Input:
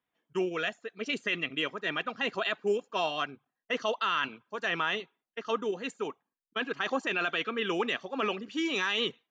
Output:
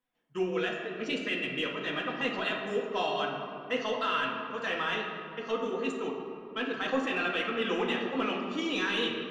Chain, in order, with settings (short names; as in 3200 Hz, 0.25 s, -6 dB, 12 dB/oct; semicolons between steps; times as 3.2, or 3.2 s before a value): low shelf 81 Hz +10.5 dB; in parallel at -10.5 dB: soft clip -28 dBFS, distortion -11 dB; on the sum: reverb RT60 2.6 s, pre-delay 4 ms, DRR -2.5 dB; gain -6 dB